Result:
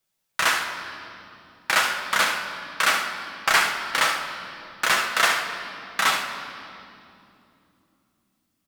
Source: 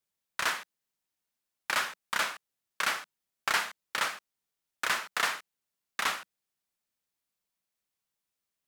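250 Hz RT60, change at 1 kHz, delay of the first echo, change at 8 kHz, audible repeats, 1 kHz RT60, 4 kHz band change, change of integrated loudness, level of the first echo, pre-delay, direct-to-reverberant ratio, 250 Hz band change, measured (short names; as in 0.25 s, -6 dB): 4.6 s, +10.0 dB, 70 ms, +9.5 dB, 1, 2.5 s, +10.0 dB, +9.0 dB, -10.0 dB, 6 ms, 0.0 dB, +11.0 dB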